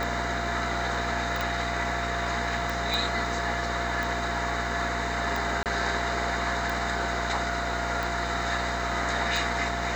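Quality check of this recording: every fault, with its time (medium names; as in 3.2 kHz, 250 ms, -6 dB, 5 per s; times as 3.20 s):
buzz 60 Hz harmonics 37 -34 dBFS
tick 45 rpm
whine 690 Hz -33 dBFS
1.41 s: pop
2.94 s: pop
5.63–5.66 s: dropout 28 ms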